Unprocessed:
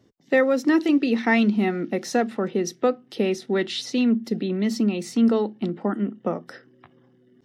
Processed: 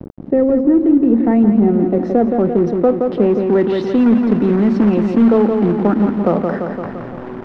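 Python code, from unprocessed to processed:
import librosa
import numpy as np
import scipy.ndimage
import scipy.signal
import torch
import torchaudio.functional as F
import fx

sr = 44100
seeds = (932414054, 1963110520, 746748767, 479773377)

y = fx.quant_companded(x, sr, bits=4)
y = fx.filter_sweep_lowpass(y, sr, from_hz=400.0, to_hz=1200.0, start_s=0.67, end_s=4.28, q=0.72)
y = fx.echo_feedback(y, sr, ms=171, feedback_pct=47, wet_db=-9.0)
y = fx.env_flatten(y, sr, amount_pct=50)
y = F.gain(torch.from_numpy(y), 6.0).numpy()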